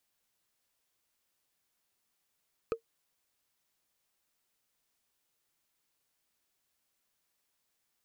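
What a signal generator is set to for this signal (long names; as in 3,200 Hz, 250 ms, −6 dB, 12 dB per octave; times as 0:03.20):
struck wood, lowest mode 456 Hz, decay 0.10 s, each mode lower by 6.5 dB, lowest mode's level −23 dB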